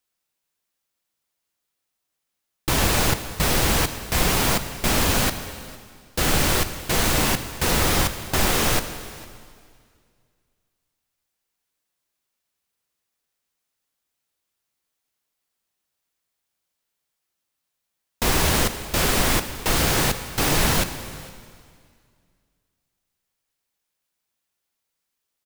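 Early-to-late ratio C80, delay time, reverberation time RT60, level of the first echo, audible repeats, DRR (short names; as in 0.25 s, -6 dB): 11.5 dB, 0.455 s, 2.0 s, -22.0 dB, 1, 9.5 dB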